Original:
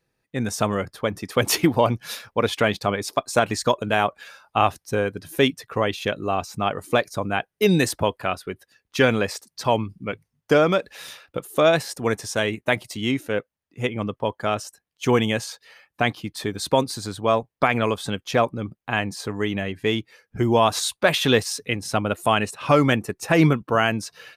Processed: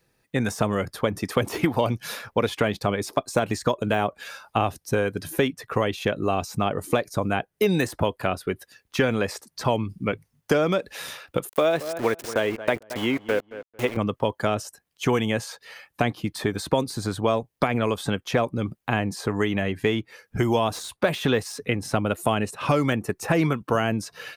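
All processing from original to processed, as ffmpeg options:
ffmpeg -i in.wav -filter_complex "[0:a]asettb=1/sr,asplit=3[link_01][link_02][link_03];[link_01]atrim=end=11.494[link_04];[link_02]atrim=start=11.49:end=13.97,asetpts=PTS-STARTPTS,afade=type=in:duration=0.004:curve=qsin,afade=type=out:start_time=2.476:duration=0.004:curve=qsin,aeval=exprs='val(0)*gte(abs(val(0)),0.0282)':channel_layout=same,bass=frequency=250:gain=-10,treble=frequency=4000:gain=-5,asplit=2[link_05][link_06];[link_06]adelay=224,lowpass=frequency=1700:poles=1,volume=-17dB,asplit=2[link_07][link_08];[link_08]adelay=224,lowpass=frequency=1700:poles=1,volume=0.23[link_09];[link_05][link_07][link_09]amix=inputs=3:normalize=0,atrim=end_sample=109368[link_10];[link_03]atrim=start=13.966[link_11];[link_04][link_10]acrossfade=duration=0.004:curve1=hsin:curve2=qsin[link_12];[link_12][link_11]acrossfade=duration=0.004:curve1=qsin:curve2=hsin,deesser=0.5,highshelf=frequency=7300:gain=5,acrossover=split=610|2100[link_13][link_14][link_15];[link_13]acompressor=threshold=-28dB:ratio=4[link_16];[link_14]acompressor=threshold=-35dB:ratio=4[link_17];[link_15]acompressor=threshold=-43dB:ratio=4[link_18];[link_16][link_17][link_18]amix=inputs=3:normalize=0,volume=6dB" out.wav

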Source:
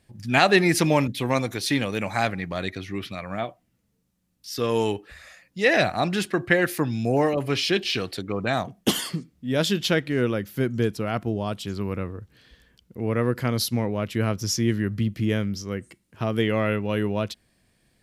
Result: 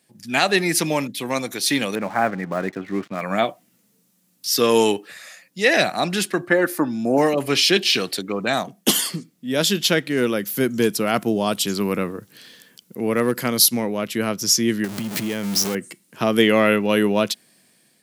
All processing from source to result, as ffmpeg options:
ffmpeg -i in.wav -filter_complex "[0:a]asettb=1/sr,asplit=3[link_01][link_02][link_03];[link_01]atrim=end=1.954[link_04];[link_02]atrim=start=1.95:end=3.21,asetpts=PTS-STARTPTS,afade=type=in:duration=0.004:curve=qsin,afade=type=out:start_time=1.256:duration=0.004:curve=qsin,lowpass=frequency=1700:width=0.5412,lowpass=frequency=1700:width=1.3066,aeval=exprs='sgn(val(0))*max(abs(val(0))-0.00355,0)':channel_layout=same[link_05];[link_03]atrim=start=3.206[link_06];[link_04][link_05]acrossfade=duration=0.004:curve1=hsin:curve2=qsin[link_07];[link_07][link_06]acrossfade=duration=0.004:curve1=qsin:curve2=hsin,asettb=1/sr,asplit=3[link_08][link_09][link_10];[link_08]atrim=end=6.474[link_11];[link_09]atrim=start=6.47:end=7.18,asetpts=PTS-STARTPTS,afade=type=in:duration=0.004:curve=qsin,afade=type=out:start_time=0.706:duration=0.004:curve=qsin,highshelf=frequency=1800:width_type=q:width=1.5:gain=-9,aecho=1:1:3.4:0.42,atrim=end_sample=31311[link_12];[link_10]atrim=start=7.176[link_13];[link_11][link_12]acrossfade=duration=0.004:curve1=hsin:curve2=qsin[link_14];[link_14][link_13]acrossfade=duration=0.004:curve1=qsin:curve2=hsin,asettb=1/sr,asplit=3[link_15][link_16][link_17];[link_15]atrim=end=10.174[link_18];[link_16]atrim=start=10.17:end=14.02,asetpts=PTS-STARTPTS,afade=type=in:duration=0.004:curve=qsin,afade=type=out:start_time=3.846:duration=0.004:curve=qsin,highshelf=frequency=6700:gain=5,asoftclip=type=hard:threshold=-12.5dB[link_19];[link_17]atrim=start=14.016[link_20];[link_18][link_19]acrossfade=duration=0.004:curve1=hsin:curve2=qsin[link_21];[link_21][link_20]acrossfade=duration=0.004:curve1=qsin:curve2=hsin,asettb=1/sr,asplit=3[link_22][link_23][link_24];[link_22]atrim=end=14.844[link_25];[link_23]atrim=start=14.84:end=15.75,asetpts=PTS-STARTPTS,afade=type=in:duration=0.004:curve=qsin,afade=type=out:start_time=0.906:duration=0.004:curve=qsin,aeval=exprs='val(0)+0.5*0.0398*sgn(val(0))':channel_layout=same,acompressor=threshold=-25dB:ratio=5:attack=3.2:release=140:knee=1:detection=peak[link_26];[link_24]atrim=start=15.746[link_27];[link_25][link_26]acrossfade=duration=0.004:curve1=hsin:curve2=qsin[link_28];[link_28][link_27]acrossfade=duration=0.004:curve1=qsin:curve2=hsin,highpass=frequency=160:width=0.5412,highpass=frequency=160:width=1.3066,highshelf=frequency=4700:gain=10.5,dynaudnorm=framelen=400:gausssize=5:maxgain=11.5dB,volume=-1dB" out.wav

